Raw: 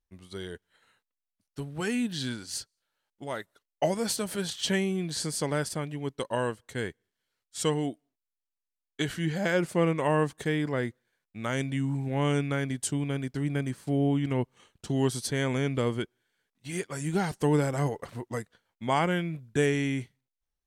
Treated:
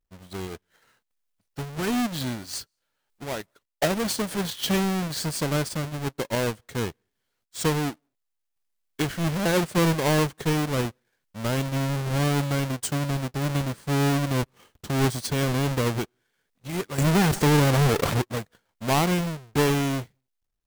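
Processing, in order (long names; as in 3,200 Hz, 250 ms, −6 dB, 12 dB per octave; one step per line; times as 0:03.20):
each half-wave held at its own peak
0:16.98–0:18.22: envelope flattener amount 70%
level −1 dB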